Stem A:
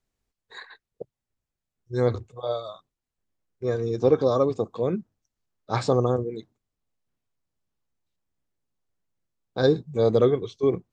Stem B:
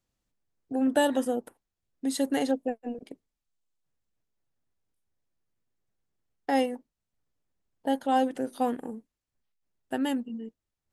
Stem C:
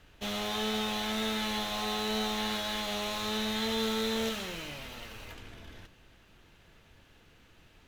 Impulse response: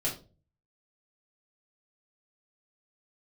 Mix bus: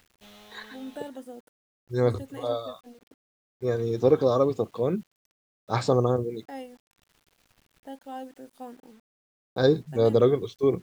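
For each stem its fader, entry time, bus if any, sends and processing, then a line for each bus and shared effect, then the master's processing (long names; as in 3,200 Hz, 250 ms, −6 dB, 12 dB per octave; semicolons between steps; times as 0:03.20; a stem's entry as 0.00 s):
−0.5 dB, 0.00 s, no send, no processing
−14.0 dB, 0.00 s, no send, de-essing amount 85%
−14.0 dB, 0.00 s, muted 0:01.09–0:03.79, no send, upward compression, threshold −43 dBFS; automatic ducking −12 dB, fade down 1.70 s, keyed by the first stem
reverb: not used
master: bit-depth reduction 10 bits, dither none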